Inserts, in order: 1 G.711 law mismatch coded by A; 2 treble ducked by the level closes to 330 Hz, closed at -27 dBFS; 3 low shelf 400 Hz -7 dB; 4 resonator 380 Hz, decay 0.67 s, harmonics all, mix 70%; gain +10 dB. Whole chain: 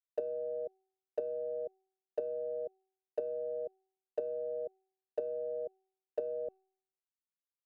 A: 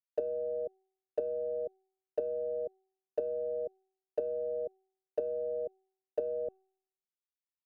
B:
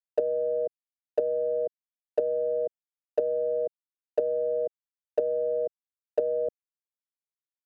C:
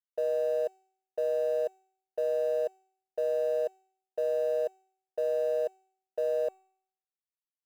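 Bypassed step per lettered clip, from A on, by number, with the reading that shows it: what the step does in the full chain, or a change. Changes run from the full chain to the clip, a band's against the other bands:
3, loudness change +2.5 LU; 4, loudness change +10.0 LU; 2, crest factor change -7.5 dB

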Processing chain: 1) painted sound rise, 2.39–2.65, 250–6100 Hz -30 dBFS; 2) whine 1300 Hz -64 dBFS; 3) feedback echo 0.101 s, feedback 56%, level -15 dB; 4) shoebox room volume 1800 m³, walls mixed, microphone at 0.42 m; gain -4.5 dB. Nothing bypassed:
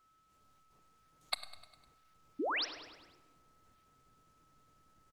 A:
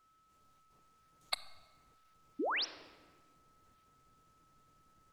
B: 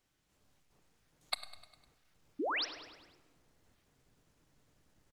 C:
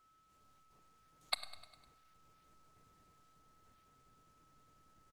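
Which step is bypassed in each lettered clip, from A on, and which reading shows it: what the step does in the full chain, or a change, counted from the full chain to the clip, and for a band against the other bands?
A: 3, echo-to-direct -10.0 dB to -12.5 dB; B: 2, momentary loudness spread change -1 LU; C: 1, 250 Hz band -15.5 dB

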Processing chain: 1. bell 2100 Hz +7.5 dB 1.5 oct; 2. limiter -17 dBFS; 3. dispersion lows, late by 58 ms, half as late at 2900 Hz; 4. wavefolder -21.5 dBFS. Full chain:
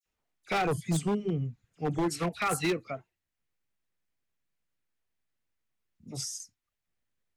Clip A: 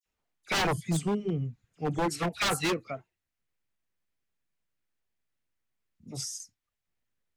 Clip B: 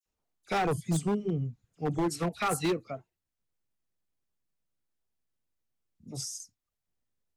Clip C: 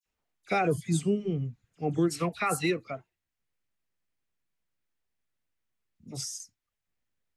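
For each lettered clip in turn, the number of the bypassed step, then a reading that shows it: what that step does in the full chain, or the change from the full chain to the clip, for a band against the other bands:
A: 2, momentary loudness spread change +1 LU; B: 1, 2 kHz band -3.0 dB; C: 4, distortion -9 dB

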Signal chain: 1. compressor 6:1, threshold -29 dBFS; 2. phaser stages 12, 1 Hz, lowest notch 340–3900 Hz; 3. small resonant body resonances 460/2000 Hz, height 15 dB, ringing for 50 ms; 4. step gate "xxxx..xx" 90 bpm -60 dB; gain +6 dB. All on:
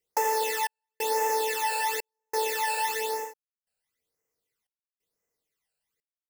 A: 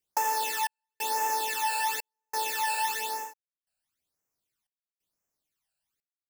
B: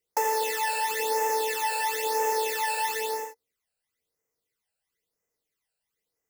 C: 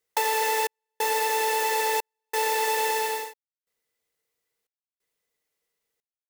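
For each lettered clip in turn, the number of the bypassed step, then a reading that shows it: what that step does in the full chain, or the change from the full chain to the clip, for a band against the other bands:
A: 3, 500 Hz band -11.5 dB; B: 4, momentary loudness spread change -4 LU; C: 2, loudness change +3.0 LU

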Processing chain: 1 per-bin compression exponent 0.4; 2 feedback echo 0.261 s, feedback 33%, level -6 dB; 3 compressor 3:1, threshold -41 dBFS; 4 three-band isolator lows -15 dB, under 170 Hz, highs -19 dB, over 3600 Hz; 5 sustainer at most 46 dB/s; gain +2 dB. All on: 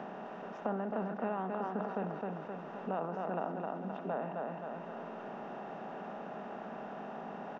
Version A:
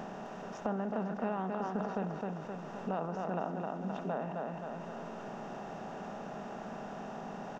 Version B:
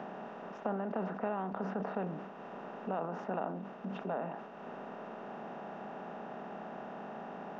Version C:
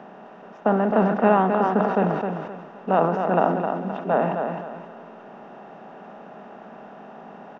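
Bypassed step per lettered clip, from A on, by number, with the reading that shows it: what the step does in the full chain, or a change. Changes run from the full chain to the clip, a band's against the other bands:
4, 125 Hz band +3.5 dB; 2, momentary loudness spread change +1 LU; 3, mean gain reduction 7.5 dB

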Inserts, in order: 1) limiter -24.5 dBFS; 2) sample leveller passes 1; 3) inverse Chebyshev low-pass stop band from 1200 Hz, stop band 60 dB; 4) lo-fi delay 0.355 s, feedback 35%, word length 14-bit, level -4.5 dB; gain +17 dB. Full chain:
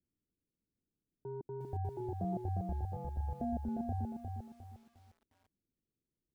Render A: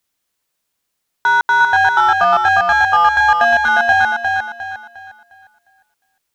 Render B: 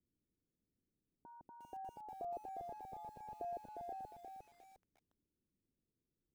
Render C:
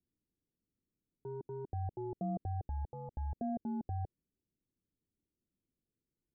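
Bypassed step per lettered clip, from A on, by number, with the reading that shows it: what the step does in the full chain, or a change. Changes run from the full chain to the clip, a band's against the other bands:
3, 1 kHz band +33.0 dB; 2, crest factor change +3.0 dB; 4, momentary loudness spread change -7 LU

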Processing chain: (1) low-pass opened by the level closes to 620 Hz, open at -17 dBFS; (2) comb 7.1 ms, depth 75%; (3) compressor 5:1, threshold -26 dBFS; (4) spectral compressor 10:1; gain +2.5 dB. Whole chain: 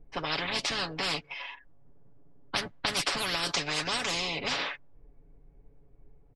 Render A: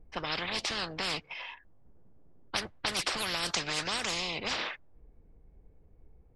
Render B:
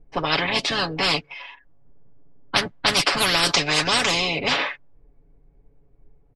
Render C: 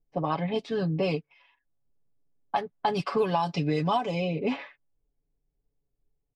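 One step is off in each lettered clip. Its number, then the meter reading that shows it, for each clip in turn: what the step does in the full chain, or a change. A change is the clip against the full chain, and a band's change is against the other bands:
2, crest factor change +2.0 dB; 3, 8 kHz band -1.5 dB; 4, 4 kHz band -20.5 dB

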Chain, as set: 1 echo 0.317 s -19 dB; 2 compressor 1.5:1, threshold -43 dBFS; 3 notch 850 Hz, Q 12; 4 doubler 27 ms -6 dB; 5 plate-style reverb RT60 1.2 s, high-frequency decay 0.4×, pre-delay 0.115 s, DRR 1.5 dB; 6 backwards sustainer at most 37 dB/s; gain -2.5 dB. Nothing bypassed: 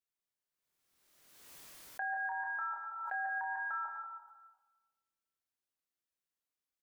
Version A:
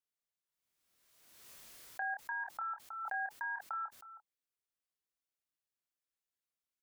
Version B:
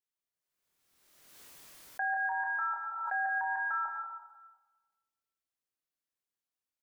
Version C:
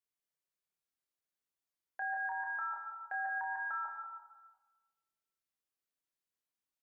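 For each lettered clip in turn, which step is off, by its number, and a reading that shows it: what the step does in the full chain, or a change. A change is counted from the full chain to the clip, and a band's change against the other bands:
5, crest factor change +2.5 dB; 2, mean gain reduction 4.0 dB; 6, momentary loudness spread change -5 LU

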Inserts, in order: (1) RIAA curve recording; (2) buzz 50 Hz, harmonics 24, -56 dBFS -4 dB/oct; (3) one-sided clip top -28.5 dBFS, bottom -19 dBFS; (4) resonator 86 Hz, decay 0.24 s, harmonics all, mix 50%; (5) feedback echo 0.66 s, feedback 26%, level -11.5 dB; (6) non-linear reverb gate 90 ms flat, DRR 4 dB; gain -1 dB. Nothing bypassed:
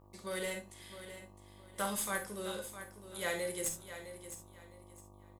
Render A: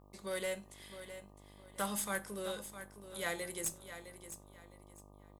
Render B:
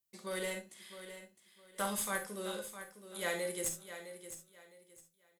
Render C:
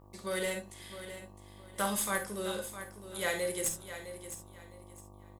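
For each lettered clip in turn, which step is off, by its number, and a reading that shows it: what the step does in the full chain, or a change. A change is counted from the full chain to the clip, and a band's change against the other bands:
6, echo-to-direct -3.0 dB to -11.0 dB; 2, 125 Hz band -2.0 dB; 4, loudness change +3.5 LU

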